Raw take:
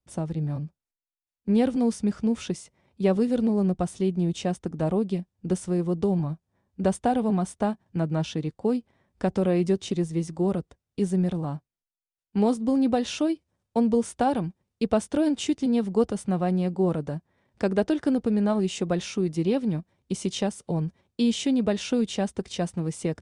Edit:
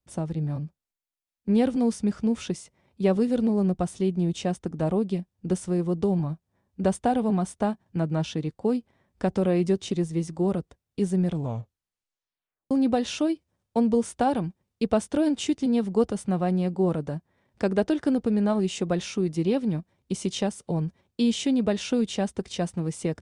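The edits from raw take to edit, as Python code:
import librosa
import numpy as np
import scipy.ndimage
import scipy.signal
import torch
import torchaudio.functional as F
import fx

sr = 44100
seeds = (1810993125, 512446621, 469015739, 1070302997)

y = fx.edit(x, sr, fx.tape_stop(start_s=11.25, length_s=1.46), tone=tone)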